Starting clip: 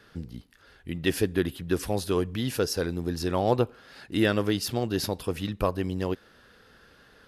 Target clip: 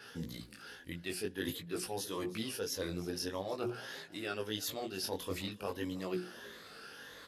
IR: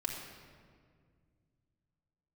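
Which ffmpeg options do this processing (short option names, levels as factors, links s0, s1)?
-filter_complex "[0:a]afftfilt=real='re*pow(10,8/40*sin(2*PI*(1.1*log(max(b,1)*sr/1024/100)/log(2)-(1.6)*(pts-256)/sr)))':imag='im*pow(10,8/40*sin(2*PI*(1.1*log(max(b,1)*sr/1024/100)/log(2)-(1.6)*(pts-256)/sr)))':win_size=1024:overlap=0.75,highpass=f=210:p=1,highshelf=f=2900:g=7.5,bandreject=f=60:t=h:w=6,bandreject=f=120:t=h:w=6,bandreject=f=180:t=h:w=6,bandreject=f=240:t=h:w=6,bandreject=f=300:t=h:w=6,bandreject=f=360:t=h:w=6,areverse,acompressor=threshold=0.0158:ratio=16,areverse,flanger=delay=16.5:depth=5.8:speed=0.48,asplit=4[s0][s1][s2][s3];[s1]adelay=317,afreqshift=42,volume=0.112[s4];[s2]adelay=634,afreqshift=84,volume=0.0484[s5];[s3]adelay=951,afreqshift=126,volume=0.0207[s6];[s0][s4][s5][s6]amix=inputs=4:normalize=0,adynamicequalizer=threshold=0.00158:dfrequency=5800:dqfactor=0.7:tfrequency=5800:tqfactor=0.7:attack=5:release=100:ratio=0.375:range=2.5:mode=cutabove:tftype=highshelf,volume=1.78"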